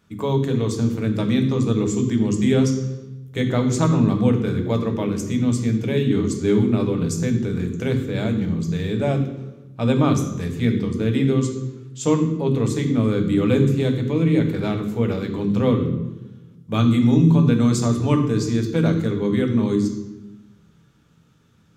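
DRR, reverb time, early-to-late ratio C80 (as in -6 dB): 3.0 dB, 1.1 s, 9.5 dB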